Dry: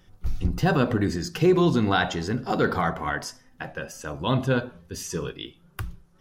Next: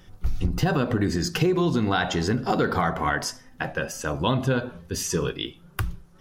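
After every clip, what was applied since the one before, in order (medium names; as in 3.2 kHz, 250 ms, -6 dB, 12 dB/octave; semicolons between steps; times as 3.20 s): compression 6:1, threshold -25 dBFS, peak gain reduction 10.5 dB; trim +6 dB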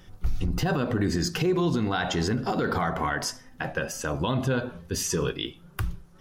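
peak limiter -16.5 dBFS, peak gain reduction 7 dB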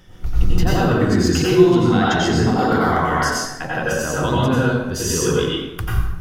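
reverberation RT60 1.0 s, pre-delay 83 ms, DRR -6 dB; trim +2 dB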